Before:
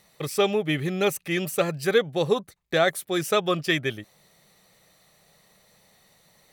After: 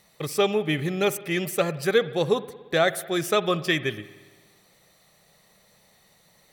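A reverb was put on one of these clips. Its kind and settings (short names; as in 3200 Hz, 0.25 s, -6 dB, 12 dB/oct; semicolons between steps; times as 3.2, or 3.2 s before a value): spring tank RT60 1.4 s, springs 57 ms, chirp 35 ms, DRR 15.5 dB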